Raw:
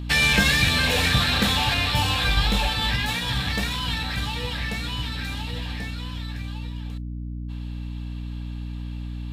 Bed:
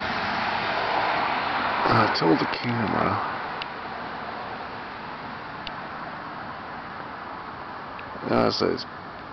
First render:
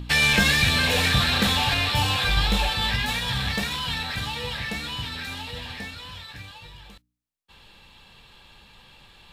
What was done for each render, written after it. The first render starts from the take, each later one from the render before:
hum removal 60 Hz, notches 5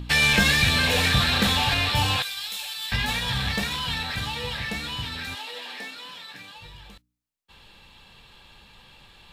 0:02.22–0:02.92: first difference
0:05.34–0:06.56: high-pass filter 390 Hz → 150 Hz 24 dB per octave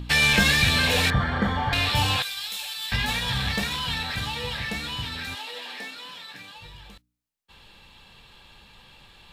0:01.10–0:01.73: Savitzky-Golay smoothing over 41 samples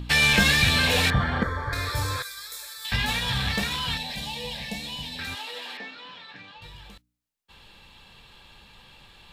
0:01.43–0:02.85: phaser with its sweep stopped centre 780 Hz, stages 6
0:03.97–0:05.19: phaser with its sweep stopped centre 360 Hz, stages 6
0:05.77–0:06.62: high-frequency loss of the air 180 metres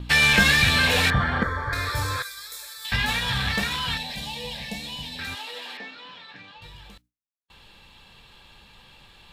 noise gate with hold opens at −45 dBFS
dynamic equaliser 1,500 Hz, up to +4 dB, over −36 dBFS, Q 1.2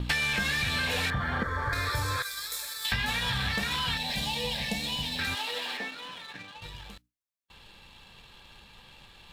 leveller curve on the samples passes 1
downward compressor 12 to 1, threshold −26 dBFS, peak gain reduction 15 dB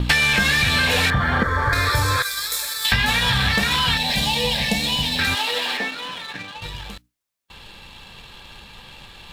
level +10.5 dB

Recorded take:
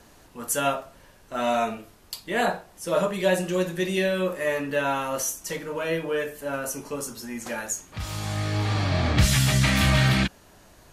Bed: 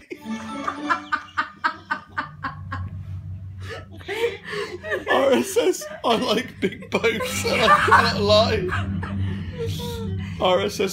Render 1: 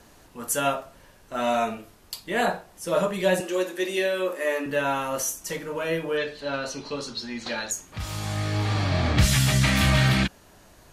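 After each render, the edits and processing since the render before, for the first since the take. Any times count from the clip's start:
0:03.40–0:04.66: Butterworth high-pass 230 Hz 48 dB per octave
0:06.17–0:07.71: low-pass with resonance 4,100 Hz, resonance Q 7.4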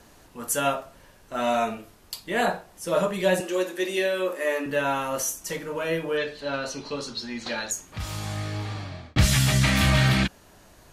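0:08.06–0:09.16: fade out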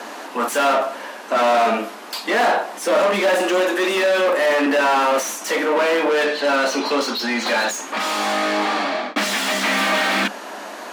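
mid-hump overdrive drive 34 dB, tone 2,200 Hz, clips at −8 dBFS
Chebyshev high-pass with heavy ripple 200 Hz, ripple 3 dB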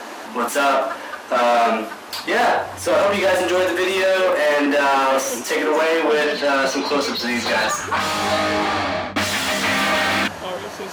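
mix in bed −10 dB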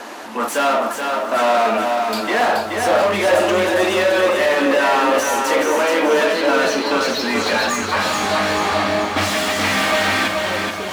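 on a send: delay that swaps between a low-pass and a high-pass 436 ms, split 870 Hz, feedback 54%, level −8.5 dB
on the sum: feedback echo at a low word length 427 ms, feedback 35%, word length 8 bits, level −4.5 dB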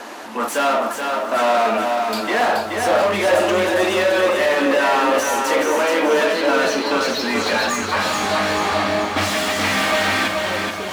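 level −1 dB

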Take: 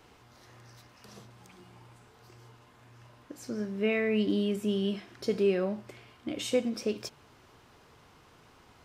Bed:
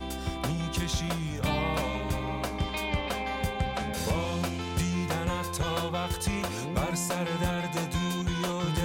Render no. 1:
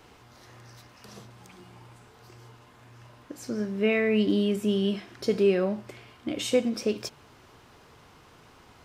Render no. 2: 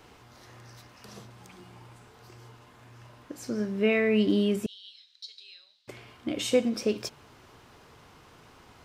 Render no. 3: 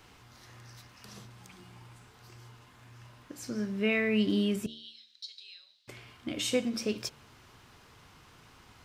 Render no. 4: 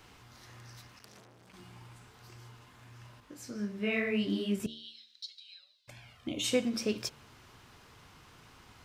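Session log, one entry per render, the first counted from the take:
level +4 dB
0:04.66–0:05.88: four-pole ladder band-pass 4,100 Hz, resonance 85%
parametric band 510 Hz −6.5 dB 2.1 octaves; hum removal 75.83 Hz, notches 9
0:00.99–0:01.54: saturating transformer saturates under 3,100 Hz; 0:03.20–0:04.60: micro pitch shift up and down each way 39 cents; 0:05.26–0:06.44: flanger swept by the level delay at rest 2.3 ms, full sweep at −35.5 dBFS

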